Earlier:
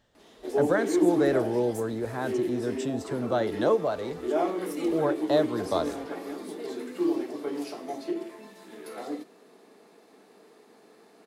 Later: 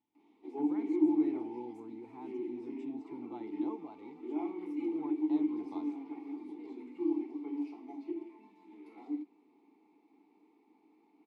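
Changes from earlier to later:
speech -4.0 dB; master: add vowel filter u

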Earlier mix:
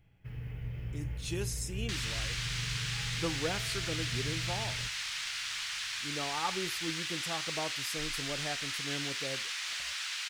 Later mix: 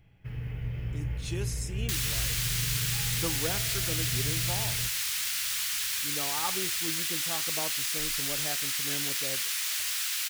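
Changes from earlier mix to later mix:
first sound +5.0 dB; second sound: remove distance through air 110 m

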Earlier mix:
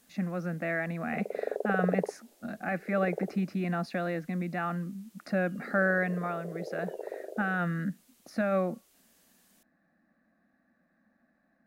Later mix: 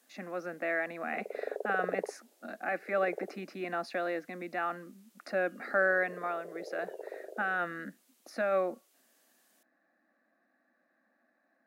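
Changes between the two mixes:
background -4.0 dB; master: add high-pass 300 Hz 24 dB/octave

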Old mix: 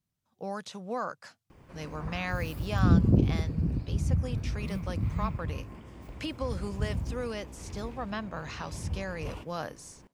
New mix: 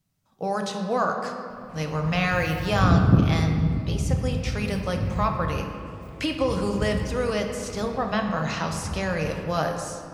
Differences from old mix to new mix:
speech +7.0 dB; reverb: on, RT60 2.4 s

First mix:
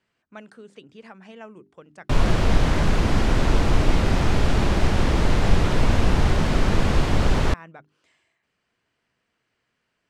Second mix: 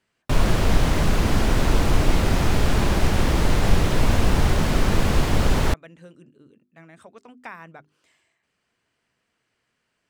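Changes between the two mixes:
background: entry -1.80 s; master: remove distance through air 50 m

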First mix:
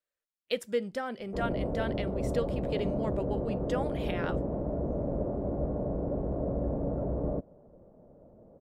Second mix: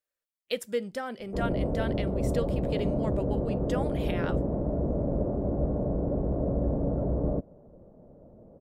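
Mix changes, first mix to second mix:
speech: add treble shelf 7.6 kHz +8 dB; background: add bass shelf 440 Hz +5 dB

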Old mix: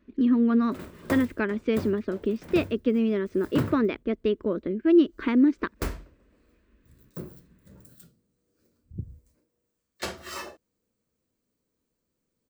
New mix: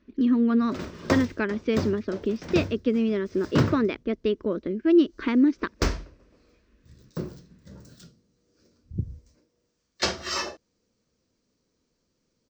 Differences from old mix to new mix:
background +6.0 dB; master: add resonant high shelf 8 kHz -14 dB, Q 3

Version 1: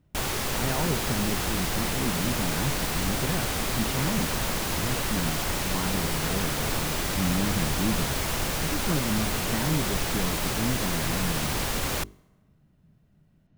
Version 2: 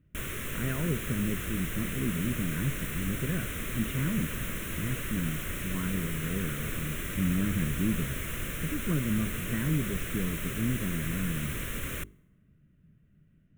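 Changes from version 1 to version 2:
background -5.0 dB; master: add static phaser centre 2 kHz, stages 4

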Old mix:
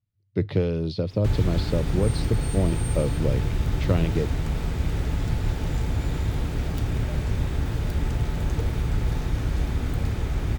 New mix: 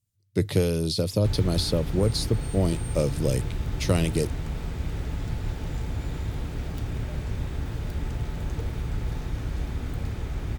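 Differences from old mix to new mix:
speech: remove distance through air 290 m; background -5.0 dB

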